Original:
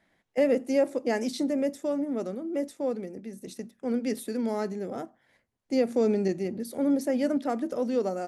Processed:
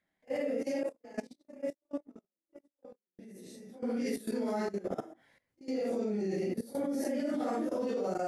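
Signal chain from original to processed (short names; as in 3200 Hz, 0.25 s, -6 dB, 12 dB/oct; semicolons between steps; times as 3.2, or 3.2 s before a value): phase scrambler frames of 0.2 s; 0.83–3.19 gate -25 dBFS, range -53 dB; level quantiser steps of 17 dB; gain +1.5 dB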